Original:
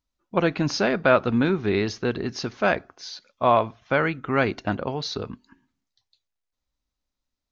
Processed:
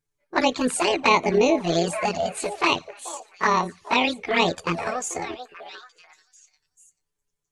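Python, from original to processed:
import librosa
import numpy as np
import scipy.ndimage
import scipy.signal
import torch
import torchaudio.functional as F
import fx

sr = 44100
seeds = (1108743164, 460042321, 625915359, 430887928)

y = fx.pitch_heads(x, sr, semitones=9.0)
y = fx.echo_stepped(y, sr, ms=438, hz=620.0, octaves=1.4, feedback_pct=70, wet_db=-9.0)
y = fx.env_flanger(y, sr, rest_ms=6.9, full_db=-17.5)
y = F.gain(torch.from_numpy(y), 5.0).numpy()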